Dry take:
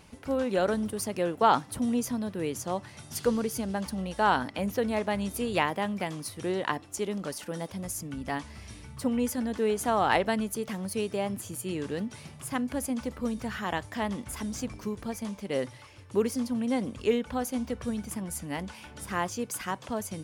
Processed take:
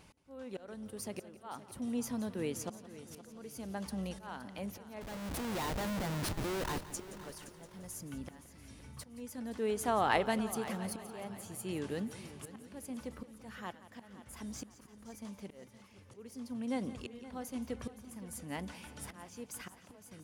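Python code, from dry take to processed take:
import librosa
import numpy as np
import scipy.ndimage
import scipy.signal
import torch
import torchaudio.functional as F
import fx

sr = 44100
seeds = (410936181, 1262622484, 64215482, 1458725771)

y = fx.schmitt(x, sr, flips_db=-38.0, at=(5.01, 6.91))
y = fx.auto_swell(y, sr, attack_ms=789.0)
y = fx.echo_heads(y, sr, ms=173, heads='first and third', feedback_pct=55, wet_db=-16)
y = y * librosa.db_to_amplitude(-5.0)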